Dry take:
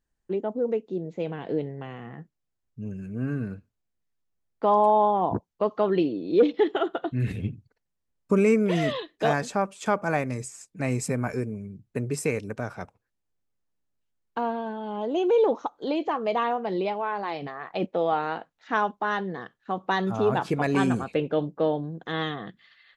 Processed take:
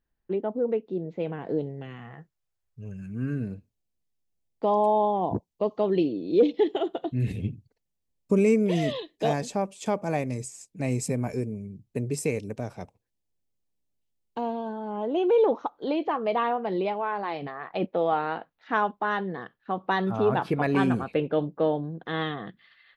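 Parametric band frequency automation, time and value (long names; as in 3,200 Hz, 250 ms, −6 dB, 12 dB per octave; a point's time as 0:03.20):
parametric band −13.5 dB 0.81 octaves
0:01.19 7,200 Hz
0:01.83 1,100 Hz
0:02.13 240 Hz
0:02.85 240 Hz
0:03.49 1,400 Hz
0:14.50 1,400 Hz
0:15.22 7,100 Hz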